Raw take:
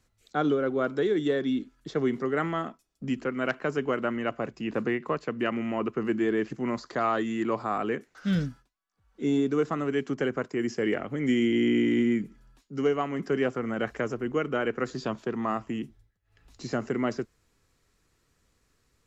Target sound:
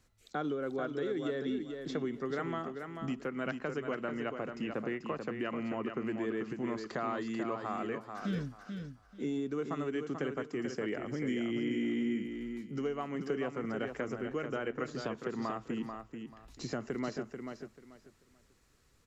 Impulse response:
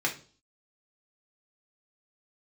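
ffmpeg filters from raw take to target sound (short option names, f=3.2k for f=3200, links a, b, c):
-filter_complex "[0:a]acompressor=threshold=-37dB:ratio=2.5,asplit=2[a][b];[b]aecho=0:1:438|876|1314:0.473|0.104|0.0229[c];[a][c]amix=inputs=2:normalize=0"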